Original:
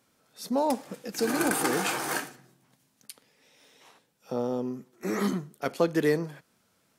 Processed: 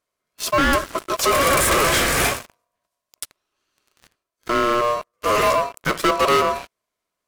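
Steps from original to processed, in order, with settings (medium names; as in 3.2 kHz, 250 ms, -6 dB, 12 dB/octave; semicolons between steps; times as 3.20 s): ring modulator 870 Hz; speed mistake 25 fps video run at 24 fps; waveshaping leveller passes 5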